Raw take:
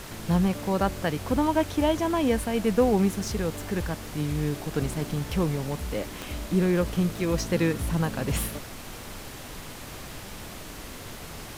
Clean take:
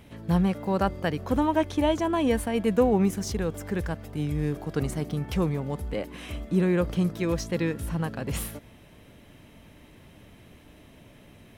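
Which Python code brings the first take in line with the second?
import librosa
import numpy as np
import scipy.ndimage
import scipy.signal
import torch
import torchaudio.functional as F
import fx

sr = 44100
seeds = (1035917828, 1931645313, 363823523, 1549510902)

y = fx.fix_declick_ar(x, sr, threshold=10.0)
y = fx.noise_reduce(y, sr, print_start_s=9.31, print_end_s=9.81, reduce_db=12.0)
y = fx.fix_level(y, sr, at_s=7.34, step_db=-3.0)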